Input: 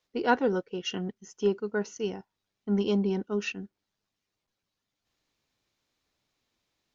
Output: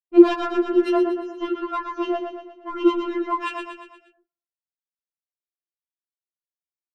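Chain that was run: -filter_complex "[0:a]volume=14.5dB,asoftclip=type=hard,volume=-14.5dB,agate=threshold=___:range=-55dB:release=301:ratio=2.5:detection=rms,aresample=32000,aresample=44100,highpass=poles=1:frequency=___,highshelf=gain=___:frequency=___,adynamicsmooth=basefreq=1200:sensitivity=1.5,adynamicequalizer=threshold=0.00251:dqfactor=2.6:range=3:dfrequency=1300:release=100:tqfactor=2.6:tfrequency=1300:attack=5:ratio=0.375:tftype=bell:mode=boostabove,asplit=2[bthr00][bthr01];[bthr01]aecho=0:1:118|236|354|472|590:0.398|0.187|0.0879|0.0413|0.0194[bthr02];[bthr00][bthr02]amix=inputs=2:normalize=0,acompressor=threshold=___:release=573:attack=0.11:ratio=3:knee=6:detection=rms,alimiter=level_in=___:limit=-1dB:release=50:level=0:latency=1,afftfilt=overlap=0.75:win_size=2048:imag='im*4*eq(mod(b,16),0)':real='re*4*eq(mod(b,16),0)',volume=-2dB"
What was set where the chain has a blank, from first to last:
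-47dB, 260, -10, 3900, -30dB, 27dB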